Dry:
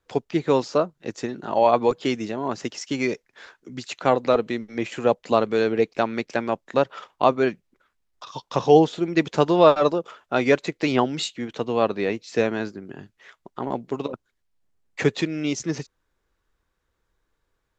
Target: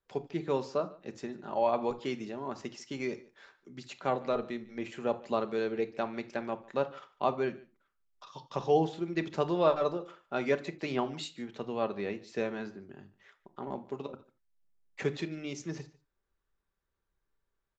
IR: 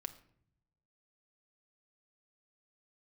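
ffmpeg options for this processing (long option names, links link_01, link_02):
-filter_complex "[0:a]highshelf=frequency=6000:gain=-4.5,aecho=1:1:147:0.0794[link_01];[1:a]atrim=start_sample=2205,afade=type=out:start_time=0.14:duration=0.01,atrim=end_sample=6615[link_02];[link_01][link_02]afir=irnorm=-1:irlink=0,volume=-8dB"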